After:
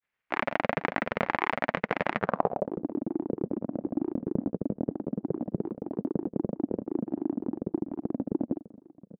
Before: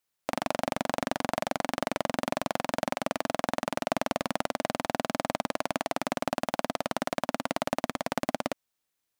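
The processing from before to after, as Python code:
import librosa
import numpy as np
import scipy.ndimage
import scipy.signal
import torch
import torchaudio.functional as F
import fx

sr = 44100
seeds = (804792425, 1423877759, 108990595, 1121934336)

y = fx.echo_feedback(x, sr, ms=885, feedback_pct=35, wet_db=-20.5)
y = fx.granulator(y, sr, seeds[0], grain_ms=100.0, per_s=20.0, spray_ms=100.0, spread_st=7)
y = fx.filter_sweep_lowpass(y, sr, from_hz=2100.0, to_hz=310.0, start_s=2.15, end_s=2.81, q=2.7)
y = y * librosa.db_to_amplitude(1.0)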